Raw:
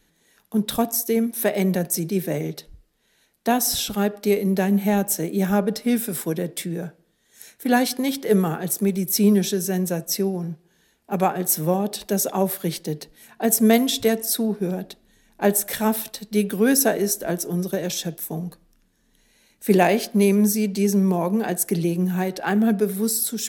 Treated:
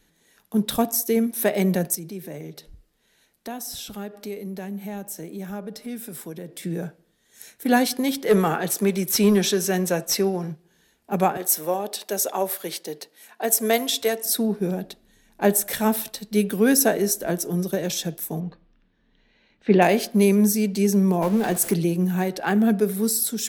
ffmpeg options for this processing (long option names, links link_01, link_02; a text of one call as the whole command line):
ffmpeg -i in.wav -filter_complex "[0:a]asplit=3[link_01][link_02][link_03];[link_01]afade=type=out:start_time=1.94:duration=0.02[link_04];[link_02]acompressor=threshold=-40dB:ratio=2:attack=3.2:release=140:knee=1:detection=peak,afade=type=in:start_time=1.94:duration=0.02,afade=type=out:start_time=6.62:duration=0.02[link_05];[link_03]afade=type=in:start_time=6.62:duration=0.02[link_06];[link_04][link_05][link_06]amix=inputs=3:normalize=0,asplit=3[link_07][link_08][link_09];[link_07]afade=type=out:start_time=8.26:duration=0.02[link_10];[link_08]asplit=2[link_11][link_12];[link_12]highpass=frequency=720:poles=1,volume=13dB,asoftclip=type=tanh:threshold=-6.5dB[link_13];[link_11][link_13]amix=inputs=2:normalize=0,lowpass=frequency=4300:poles=1,volume=-6dB,afade=type=in:start_time=8.26:duration=0.02,afade=type=out:start_time=10.51:duration=0.02[link_14];[link_09]afade=type=in:start_time=10.51:duration=0.02[link_15];[link_10][link_14][link_15]amix=inputs=3:normalize=0,asettb=1/sr,asplit=3[link_16][link_17][link_18];[link_16]atrim=end=11.374[link_19];[link_17]atrim=start=11.37:end=14.26,asetpts=PTS-STARTPTS,afade=type=in:duration=0.004:curve=qsin,afade=type=out:start_time=2.886:duration=0.004:curve=qsin,highpass=430[link_20];[link_18]atrim=start=14.256[link_21];[link_19][link_20]acrossfade=duration=0.004:curve1=hsin:curve2=qsin[link_22];[link_22][link_21]acrossfade=duration=0.004:curve1=qsin:curve2=hsin,asettb=1/sr,asplit=3[link_23][link_24][link_25];[link_23]atrim=end=18.404[link_26];[link_24]atrim=start=18.4:end=19.82,asetpts=PTS-STARTPTS,afade=type=in:duration=0.004:curve=qsin,afade=type=out:start_time=1.416:duration=0.004:curve=qsin,lowpass=frequency=3700:width=0.5412,lowpass=frequency=3700:width=1.3066[link_27];[link_25]atrim=start=19.816[link_28];[link_26][link_27]acrossfade=duration=0.004:curve1=hsin:curve2=qsin[link_29];[link_29][link_28]acrossfade=duration=0.004:curve1=qsin:curve2=hsin,asettb=1/sr,asplit=3[link_30][link_31][link_32];[link_30]atrim=end=21.224[link_33];[link_31]atrim=start=21.22:end=21.74,asetpts=PTS-STARTPTS,afade=type=in:duration=0.004:curve=qsin,afade=type=out:start_time=0.516:duration=0.004:curve=qsin,aeval=exprs='val(0)+0.5*0.0316*sgn(val(0))':channel_layout=same[link_34];[link_32]atrim=start=21.736[link_35];[link_33][link_34]acrossfade=duration=0.004:curve1=hsin:curve2=qsin[link_36];[link_36][link_35]acrossfade=duration=0.004:curve1=qsin:curve2=hsin" out.wav